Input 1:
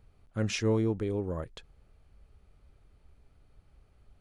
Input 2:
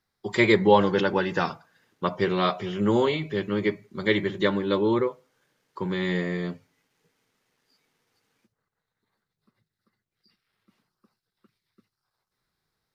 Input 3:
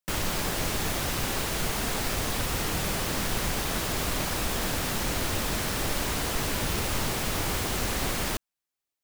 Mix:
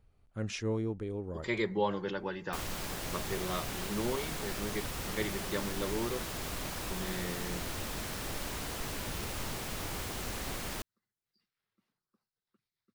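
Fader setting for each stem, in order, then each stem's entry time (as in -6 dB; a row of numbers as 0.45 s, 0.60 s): -6.0 dB, -13.0 dB, -9.5 dB; 0.00 s, 1.10 s, 2.45 s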